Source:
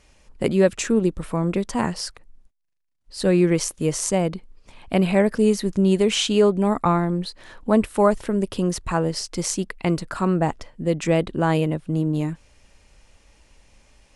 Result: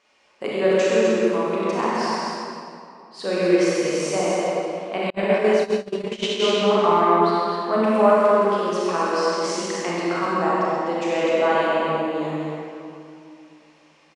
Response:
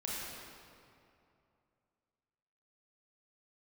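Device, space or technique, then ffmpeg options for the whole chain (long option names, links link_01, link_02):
station announcement: -filter_complex "[0:a]highpass=420,lowpass=4900,equalizer=frequency=1100:width_type=o:width=0.24:gain=6,aecho=1:1:96.21|131.2|253.6:0.398|0.501|0.501[link_01];[1:a]atrim=start_sample=2205[link_02];[link_01][link_02]afir=irnorm=-1:irlink=0,asettb=1/sr,asplit=3[link_03][link_04][link_05];[link_03]atrim=end=5.104[link_06];[link_04]atrim=start=5.1:end=6.47,asetpts=PTS-STARTPTS,afade=type=in:duration=0.004:curve=qsin,afade=type=out:start_time=1.366:duration=0.004:curve=qsin,agate=range=-37dB:threshold=-18dB:ratio=16:detection=peak[link_07];[link_05]atrim=start=6.466[link_08];[link_06][link_07]acrossfade=duration=0.004:curve1=hsin:curve2=qsin[link_09];[link_09][link_08]acrossfade=duration=0.004:curve1=qsin:curve2=hsin"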